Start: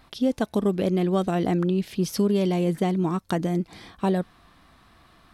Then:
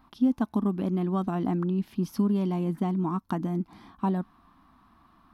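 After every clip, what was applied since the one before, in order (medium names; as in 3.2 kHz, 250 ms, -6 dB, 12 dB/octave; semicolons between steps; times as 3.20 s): graphic EQ 125/250/500/1000/2000/4000/8000 Hz -3/+10/-12/+10/-6/-5/-10 dB; trim -6 dB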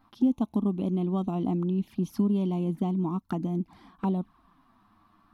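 touch-sensitive flanger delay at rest 10.8 ms, full sweep at -25.5 dBFS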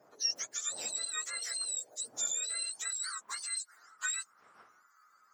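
spectrum inverted on a logarithmic axis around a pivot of 1.2 kHz; wind noise 170 Hz -44 dBFS; high-pass sweep 650 Hz -> 1.3 kHz, 2.22–3.71 s; trim -4 dB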